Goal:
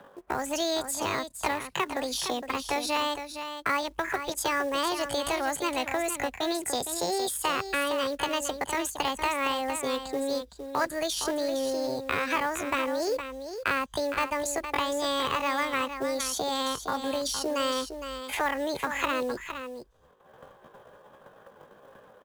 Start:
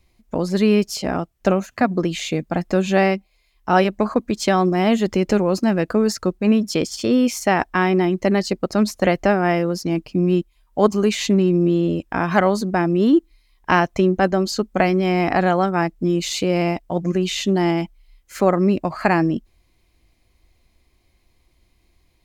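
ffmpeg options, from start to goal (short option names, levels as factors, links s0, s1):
-filter_complex "[0:a]agate=range=0.0224:threshold=0.00447:ratio=3:detection=peak,lowpass=f=9000:w=0.5412,lowpass=f=9000:w=1.3066,equalizer=f=200:w=2.7:g=-10,acrossover=split=170|1200[s0][s1][s2];[s1]acompressor=mode=upward:threshold=0.0794:ratio=2.5[s3];[s2]alimiter=limit=0.133:level=0:latency=1:release=316[s4];[s0][s3][s4]amix=inputs=3:normalize=0,acrossover=split=160|940[s5][s6][s7];[s5]acompressor=threshold=0.00891:ratio=4[s8];[s6]acompressor=threshold=0.0251:ratio=4[s9];[s7]acompressor=threshold=0.0355:ratio=4[s10];[s8][s9][s10]amix=inputs=3:normalize=0,asetrate=68011,aresample=44100,atempo=0.64842,acrusher=bits=5:mode=log:mix=0:aa=0.000001,aecho=1:1:462:0.355"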